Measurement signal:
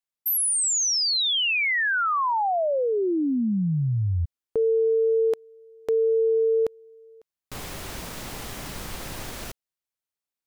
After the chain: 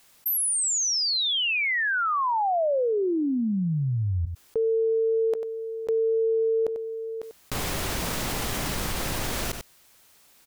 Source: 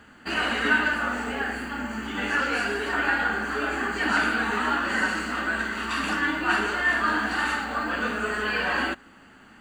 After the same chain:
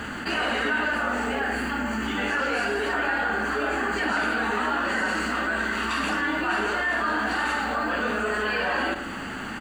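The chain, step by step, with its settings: dynamic EQ 590 Hz, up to +6 dB, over -36 dBFS, Q 1.2; echo 94 ms -24 dB; fast leveller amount 70%; gain -6.5 dB

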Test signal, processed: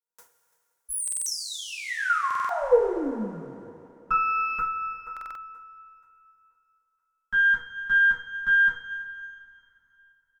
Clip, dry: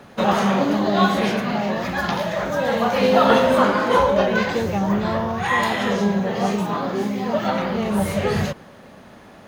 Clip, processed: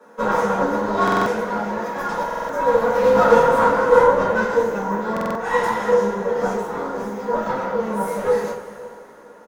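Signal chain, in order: HPF 250 Hz 24 dB/oct; notches 60/120/180/240/300/360/420/480/540/600 Hz; added harmonics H 3 -16 dB, 5 -27 dB, 6 -18 dB, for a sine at -3 dBFS; band shelf 3300 Hz -8.5 dB 1.3 oct; small resonant body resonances 480/950/1400 Hz, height 14 dB, ringing for 70 ms; on a send: echo 0.337 s -21.5 dB; on the sum: two-slope reverb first 0.28 s, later 3 s, from -18 dB, DRR -10 dB; stuck buffer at 1.03/2.26/5.12, samples 2048, times 4; gain -12 dB

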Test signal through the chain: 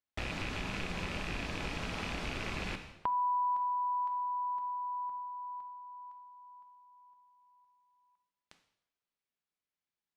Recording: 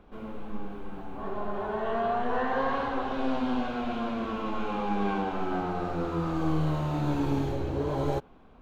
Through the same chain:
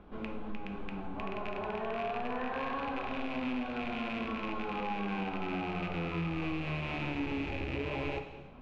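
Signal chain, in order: rattling part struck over -37 dBFS, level -22 dBFS; LPF 4200 Hz 12 dB/oct; bell 170 Hz +4 dB 0.4 oct; two-slope reverb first 0.7 s, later 2.6 s, from -26 dB, DRR 5.5 dB; compressor 3:1, threshold -35 dBFS

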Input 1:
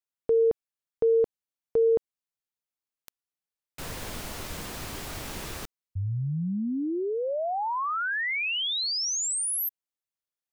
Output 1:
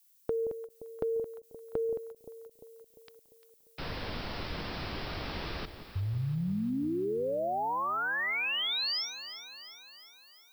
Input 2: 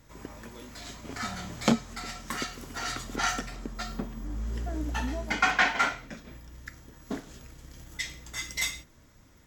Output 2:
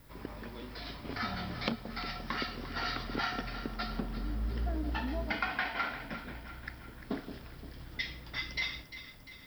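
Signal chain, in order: steep low-pass 5300 Hz 96 dB/oct; compressor 10:1, threshold -30 dBFS; echo with dull and thin repeats by turns 0.174 s, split 830 Hz, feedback 75%, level -10 dB; added noise violet -65 dBFS; ending taper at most 400 dB/s

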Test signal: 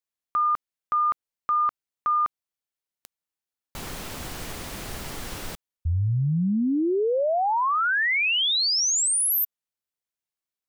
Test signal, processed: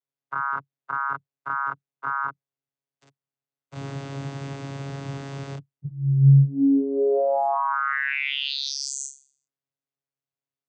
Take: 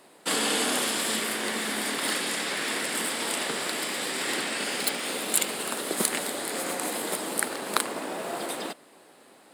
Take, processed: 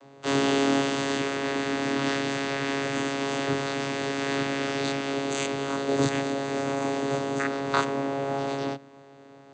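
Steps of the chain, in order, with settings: spectral dilation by 60 ms; vocoder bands 16, saw 138 Hz

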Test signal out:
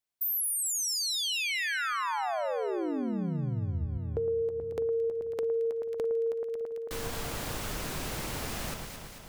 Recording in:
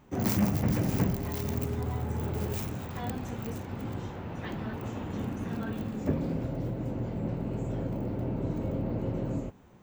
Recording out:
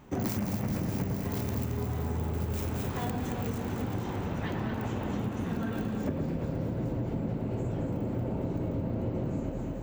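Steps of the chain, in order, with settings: on a send: echo with dull and thin repeats by turns 0.111 s, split 1700 Hz, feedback 78%, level -4 dB; on the sum: compressor 6:1, threshold -33 dBFS; gain +4.5 dB

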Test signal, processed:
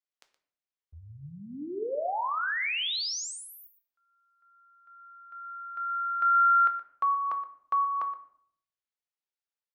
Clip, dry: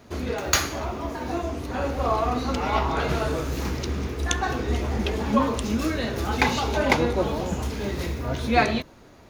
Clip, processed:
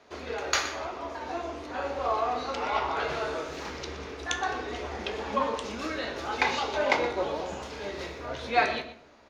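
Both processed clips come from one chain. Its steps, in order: three-band isolator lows -16 dB, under 370 Hz, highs -21 dB, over 6700 Hz; on a send: echo 0.121 s -14.5 dB; on the sum: shoebox room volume 110 m³, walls mixed, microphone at 0.33 m; gain -3.5 dB

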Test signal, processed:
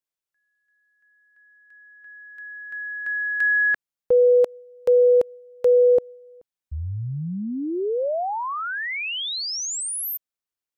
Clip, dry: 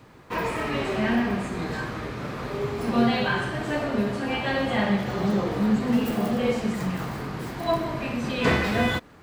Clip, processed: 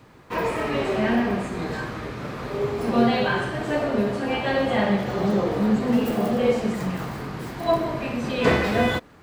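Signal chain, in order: dynamic EQ 510 Hz, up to +5 dB, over -34 dBFS, Q 0.99

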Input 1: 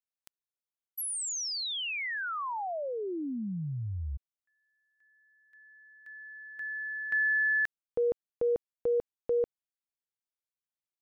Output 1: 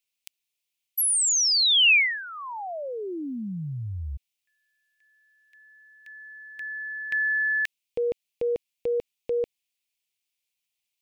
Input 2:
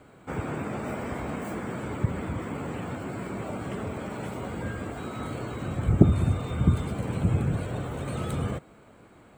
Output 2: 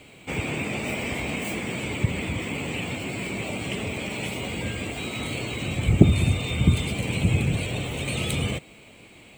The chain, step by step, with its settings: resonant high shelf 1900 Hz +9 dB, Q 3; gain +2.5 dB

